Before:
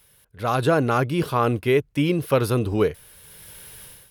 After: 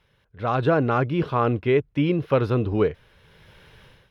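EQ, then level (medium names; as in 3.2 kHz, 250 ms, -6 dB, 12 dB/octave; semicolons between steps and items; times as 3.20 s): distance through air 240 m; band-stop 4.6 kHz, Q 17; 0.0 dB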